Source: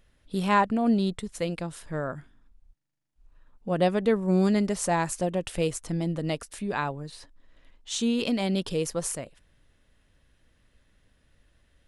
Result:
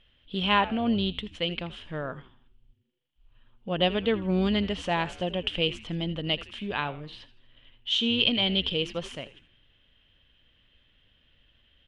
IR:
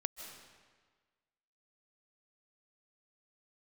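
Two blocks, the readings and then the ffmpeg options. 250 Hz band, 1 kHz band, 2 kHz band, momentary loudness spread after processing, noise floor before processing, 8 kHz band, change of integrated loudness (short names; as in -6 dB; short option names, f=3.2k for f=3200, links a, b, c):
-3.0 dB, -2.0 dB, +2.5 dB, 15 LU, -67 dBFS, -17.5 dB, 0.0 dB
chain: -filter_complex "[0:a]lowpass=f=3.1k:t=q:w=9.2,asplit=2[a][b];[b]asplit=4[c][d][e][f];[c]adelay=81,afreqshift=-130,volume=-16dB[g];[d]adelay=162,afreqshift=-260,volume=-23.5dB[h];[e]adelay=243,afreqshift=-390,volume=-31.1dB[i];[f]adelay=324,afreqshift=-520,volume=-38.6dB[j];[g][h][i][j]amix=inputs=4:normalize=0[k];[a][k]amix=inputs=2:normalize=0,volume=-3dB"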